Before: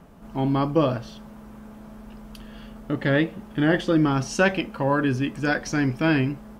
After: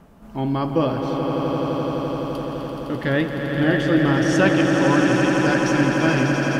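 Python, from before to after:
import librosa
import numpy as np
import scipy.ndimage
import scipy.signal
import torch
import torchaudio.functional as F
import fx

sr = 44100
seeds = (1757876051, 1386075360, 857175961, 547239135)

y = fx.echo_swell(x, sr, ms=85, loudest=8, wet_db=-8)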